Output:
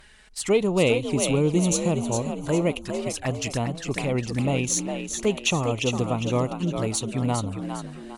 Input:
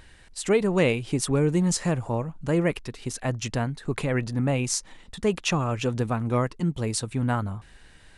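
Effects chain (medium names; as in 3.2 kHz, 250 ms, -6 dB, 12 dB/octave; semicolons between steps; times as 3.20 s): bass shelf 500 Hz -6.5 dB; touch-sensitive flanger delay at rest 5.6 ms, full sweep at -27.5 dBFS; frequency-shifting echo 405 ms, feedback 38%, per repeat +53 Hz, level -7 dB; Chebyshev shaper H 8 -37 dB, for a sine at -11 dBFS; trim +5.5 dB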